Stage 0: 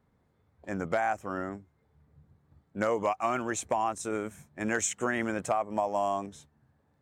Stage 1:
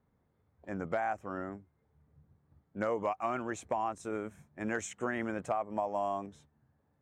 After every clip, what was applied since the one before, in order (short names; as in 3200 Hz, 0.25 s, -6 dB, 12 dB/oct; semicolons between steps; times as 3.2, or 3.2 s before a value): high shelf 3800 Hz -11 dB; gain -4 dB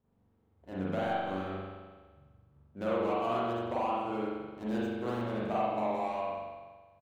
median filter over 25 samples; on a send: feedback echo 93 ms, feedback 57%, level -13 dB; on the sum: spring tank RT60 1.4 s, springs 42 ms, chirp 25 ms, DRR -7.5 dB; gain -4.5 dB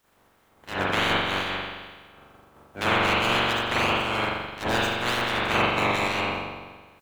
spectral limiter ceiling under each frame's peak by 28 dB; gain +8.5 dB